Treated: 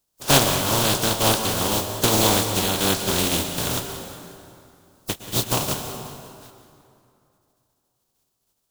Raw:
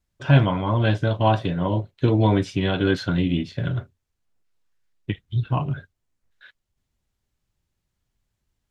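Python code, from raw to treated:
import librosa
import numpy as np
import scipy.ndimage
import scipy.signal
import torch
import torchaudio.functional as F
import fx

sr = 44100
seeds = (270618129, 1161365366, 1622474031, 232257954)

p1 = fx.spec_flatten(x, sr, power=0.22)
p2 = fx.peak_eq(p1, sr, hz=2000.0, db=-11.0, octaves=1.2)
p3 = p2 + fx.echo_feedback(p2, sr, ms=183, feedback_pct=51, wet_db=-16, dry=0)
p4 = fx.rev_plate(p3, sr, seeds[0], rt60_s=2.7, hf_ratio=0.65, predelay_ms=100, drr_db=7.0)
y = p4 * librosa.db_to_amplitude(1.5)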